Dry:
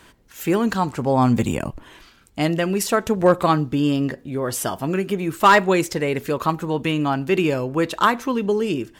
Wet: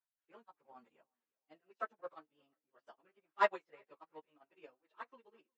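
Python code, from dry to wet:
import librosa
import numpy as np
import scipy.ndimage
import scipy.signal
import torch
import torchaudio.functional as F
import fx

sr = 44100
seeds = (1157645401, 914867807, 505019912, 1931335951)

y = scipy.signal.sosfilt(scipy.signal.butter(2, 690.0, 'highpass', fs=sr, output='sos'), x)
y = fx.env_lowpass(y, sr, base_hz=2900.0, full_db=-20.0)
y = fx.high_shelf(y, sr, hz=4900.0, db=12.0)
y = fx.auto_swell(y, sr, attack_ms=110.0)
y = fx.stretch_vocoder_free(y, sr, factor=0.62)
y = fx.spacing_loss(y, sr, db_at_10k=38)
y = fx.doubler(y, sr, ms=13.0, db=-8.0)
y = fx.echo_feedback(y, sr, ms=359, feedback_pct=44, wet_db=-18)
y = fx.upward_expand(y, sr, threshold_db=-45.0, expansion=2.5)
y = y * librosa.db_to_amplitude(-4.0)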